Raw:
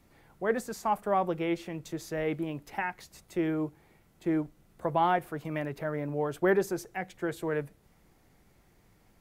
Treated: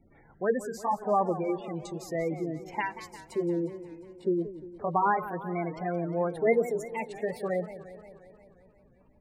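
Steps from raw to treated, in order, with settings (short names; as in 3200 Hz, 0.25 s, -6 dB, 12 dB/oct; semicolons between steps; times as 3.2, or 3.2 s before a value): gliding pitch shift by +4 st starting unshifted; notches 60/120 Hz; spectral gate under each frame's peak -15 dB strong; warbling echo 0.177 s, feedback 66%, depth 215 cents, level -14 dB; gain +2.5 dB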